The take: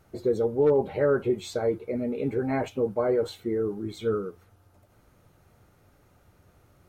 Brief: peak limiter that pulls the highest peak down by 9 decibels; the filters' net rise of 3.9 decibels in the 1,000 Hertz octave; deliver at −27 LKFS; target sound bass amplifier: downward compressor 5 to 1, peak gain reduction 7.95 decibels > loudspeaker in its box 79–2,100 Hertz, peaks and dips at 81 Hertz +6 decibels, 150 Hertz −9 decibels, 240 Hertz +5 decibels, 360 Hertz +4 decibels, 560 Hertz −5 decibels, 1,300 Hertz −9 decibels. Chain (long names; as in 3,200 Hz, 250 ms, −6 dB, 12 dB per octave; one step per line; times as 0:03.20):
parametric band 1,000 Hz +8 dB
brickwall limiter −19.5 dBFS
downward compressor 5 to 1, threshold −31 dBFS
loudspeaker in its box 79–2,100 Hz, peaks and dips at 81 Hz +6 dB, 150 Hz −9 dB, 240 Hz +5 dB, 360 Hz +4 dB, 560 Hz −5 dB, 1,300 Hz −9 dB
level +7.5 dB